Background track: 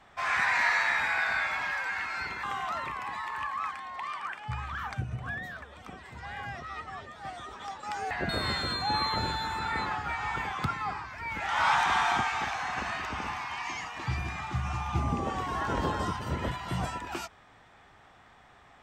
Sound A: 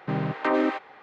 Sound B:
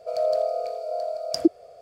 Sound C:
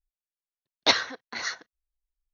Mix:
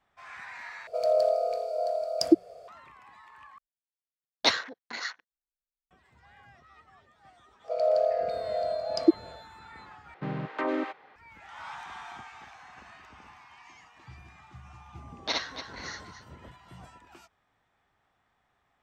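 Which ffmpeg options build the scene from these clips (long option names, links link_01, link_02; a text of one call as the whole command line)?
ffmpeg -i bed.wav -i cue0.wav -i cue1.wav -i cue2.wav -filter_complex "[2:a]asplit=2[link_01][link_02];[3:a]asplit=2[link_03][link_04];[0:a]volume=-17dB[link_05];[link_01]bandreject=frequency=60:width_type=h:width=6,bandreject=frequency=120:width_type=h:width=6,bandreject=frequency=180:width_type=h:width=6[link_06];[link_03]afwtdn=0.00891[link_07];[link_02]highpass=100,lowpass=4200[link_08];[link_04]aecho=1:1:58.31|285.7:0.891|0.316[link_09];[link_05]asplit=4[link_10][link_11][link_12][link_13];[link_10]atrim=end=0.874[link_14];[link_06]atrim=end=1.81,asetpts=PTS-STARTPTS,volume=-0.5dB[link_15];[link_11]atrim=start=2.676:end=3.584[link_16];[link_07]atrim=end=2.33,asetpts=PTS-STARTPTS,volume=-3dB[link_17];[link_12]atrim=start=5.906:end=10.144[link_18];[1:a]atrim=end=1.02,asetpts=PTS-STARTPTS,volume=-6.5dB[link_19];[link_13]atrim=start=11.156[link_20];[link_08]atrim=end=1.81,asetpts=PTS-STARTPTS,volume=-1dB,afade=type=in:duration=0.05,afade=type=out:start_time=1.76:duration=0.05,adelay=7630[link_21];[link_09]atrim=end=2.33,asetpts=PTS-STARTPTS,volume=-11dB,afade=type=in:duration=0.004:curve=hsin,afade=type=out:start_time=2.326:duration=0.004:curve=hsin,adelay=14410[link_22];[link_14][link_15]acrossfade=duration=0.004:curve1=hsin:curve2=hsin[link_23];[link_23][link_16]acrossfade=duration=0.004:curve1=hsin:curve2=hsin[link_24];[link_24][link_17]acrossfade=duration=0.004:curve1=hsin:curve2=hsin[link_25];[link_25][link_18]acrossfade=duration=0.004:curve1=hsin:curve2=hsin[link_26];[link_26][link_19]acrossfade=duration=0.004:curve1=hsin:curve2=hsin[link_27];[link_27][link_20]acrossfade=duration=0.004:curve1=hsin:curve2=hsin[link_28];[link_28][link_21][link_22]amix=inputs=3:normalize=0" out.wav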